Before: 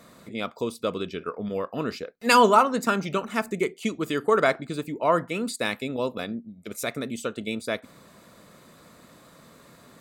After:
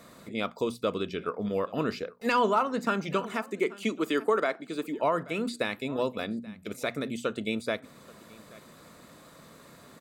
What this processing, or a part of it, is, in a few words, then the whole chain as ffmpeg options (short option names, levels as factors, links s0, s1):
clipper into limiter: -filter_complex "[0:a]acrossover=split=4400[s0][s1];[s1]acompressor=threshold=0.00501:ratio=4:attack=1:release=60[s2];[s0][s2]amix=inputs=2:normalize=0,asettb=1/sr,asplit=3[s3][s4][s5];[s3]atrim=end=3.324[s6];[s4]atrim=start=3.32:end=4.99,asetpts=PTS-STARTPTS,afade=t=in:d=0.004:c=qsin,afade=t=out:st=1.666:d=0.004:c=qsin,highpass=f=210:w=0.5412,highpass=f=210:w=1.3066[s7];[s5]atrim=start=4.986[s8];[s6][s7]acrossfade=d=0.004:c1=hsin:c2=qsin[s9];[s9][s8]acrossfade=d=0.004:c1=qsin:c2=hsin,bandreject=f=60:t=h:w=6,bandreject=f=120:t=h:w=6,bandreject=f=180:t=h:w=6,bandreject=f=240:t=h:w=6,aecho=1:1:830:0.0631,asoftclip=type=hard:threshold=0.422,alimiter=limit=0.168:level=0:latency=1:release=379"